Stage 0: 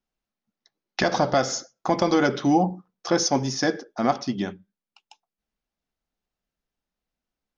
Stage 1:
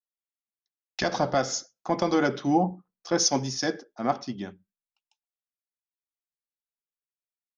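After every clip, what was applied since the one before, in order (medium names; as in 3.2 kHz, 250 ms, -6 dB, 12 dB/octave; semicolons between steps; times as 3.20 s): three bands expanded up and down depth 70%; trim -4 dB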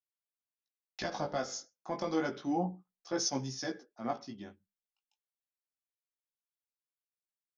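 chorus 0.3 Hz, delay 15 ms, depth 5 ms; trim -7 dB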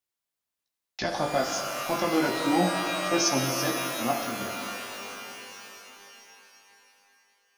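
pitch-shifted reverb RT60 3.3 s, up +12 st, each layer -2 dB, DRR 5 dB; trim +7 dB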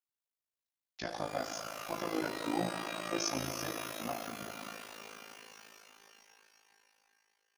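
AM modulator 54 Hz, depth 75%; trim -7 dB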